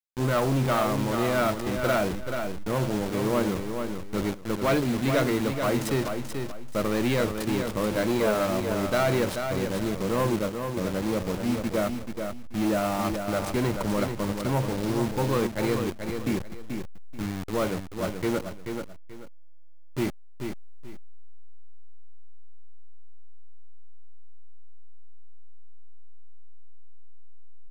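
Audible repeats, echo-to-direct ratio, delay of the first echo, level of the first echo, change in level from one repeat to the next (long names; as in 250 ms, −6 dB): 2, −6.0 dB, 434 ms, −6.5 dB, −11.5 dB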